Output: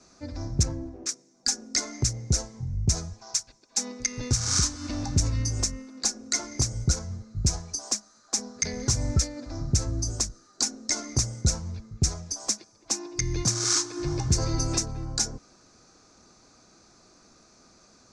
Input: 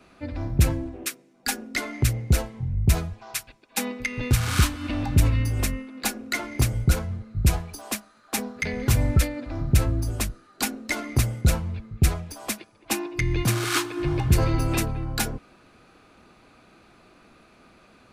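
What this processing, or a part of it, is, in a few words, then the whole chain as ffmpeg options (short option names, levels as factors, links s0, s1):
over-bright horn tweeter: -filter_complex "[0:a]lowpass=f=6700:w=0.5412,lowpass=f=6700:w=1.3066,asettb=1/sr,asplit=3[s0][s1][s2];[s0]atrim=end=0.634[s3];[s1]atrim=start=0.63:end=1.09,asetpts=PTS-STARTPTS,afade=t=in:d=0.004:c=qsin,afade=t=out:st=0.456:d=0.004:c=qsin,lowpass=f=1800:p=1[s4];[s2]atrim=start=1.086[s5];[s3][s4]acrossfade=d=0.004:c1=hsin:c2=qsin[s6];[s6][s5]acrossfade=d=0.004:c1=qsin:c2=hsin,highshelf=f=4200:t=q:w=3:g=13,alimiter=limit=0.422:level=0:latency=1:release=210,volume=0.631"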